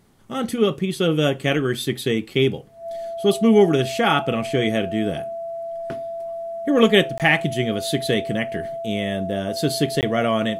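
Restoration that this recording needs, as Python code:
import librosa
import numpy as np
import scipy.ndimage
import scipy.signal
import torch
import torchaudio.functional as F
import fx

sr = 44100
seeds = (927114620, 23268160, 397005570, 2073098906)

y = fx.notch(x, sr, hz=670.0, q=30.0)
y = fx.fix_interpolate(y, sr, at_s=(7.18, 10.01), length_ms=18.0)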